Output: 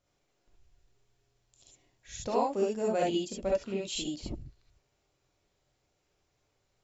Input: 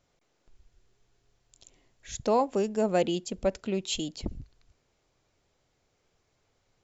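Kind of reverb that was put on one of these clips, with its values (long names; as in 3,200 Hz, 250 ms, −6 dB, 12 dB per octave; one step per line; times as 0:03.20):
reverb whose tail is shaped and stops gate 90 ms rising, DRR −3 dB
level −8 dB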